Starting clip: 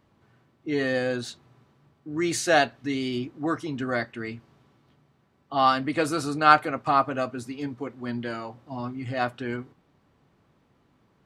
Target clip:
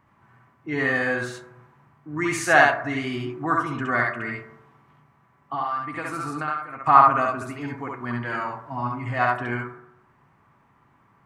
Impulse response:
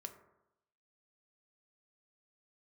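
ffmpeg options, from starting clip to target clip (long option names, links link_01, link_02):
-filter_complex "[0:a]equalizer=frequency=125:width_type=o:width=1:gain=5,equalizer=frequency=500:width_type=o:width=1:gain=-5,equalizer=frequency=1000:width_type=o:width=1:gain=10,equalizer=frequency=2000:width_type=o:width=1:gain=7,equalizer=frequency=4000:width_type=o:width=1:gain=-9,asettb=1/sr,asplit=3[link_01][link_02][link_03];[link_01]atrim=end=5.544[link_04];[link_02]atrim=start=5.54:end=6.86,asetpts=PTS-STARTPTS,afade=type=in:duration=0.004:curve=qsin,afade=type=out:start_time=1.316:duration=0.004:curve=qsin,acompressor=threshold=-27dB:ratio=10[link_05];[link_03]atrim=start=6.856[link_06];[link_04][link_05]acrossfade=duration=0.004:curve1=hsin:curve2=qsin[link_07];[link_07][link_06]acrossfade=duration=0.004:curve1=qsin:curve2=hsin,asplit=2[link_08][link_09];[1:a]atrim=start_sample=2205,lowshelf=frequency=220:gain=-10,adelay=67[link_10];[link_09][link_10]afir=irnorm=-1:irlink=0,volume=4.5dB[link_11];[link_08][link_11]amix=inputs=2:normalize=0,volume=-1.5dB"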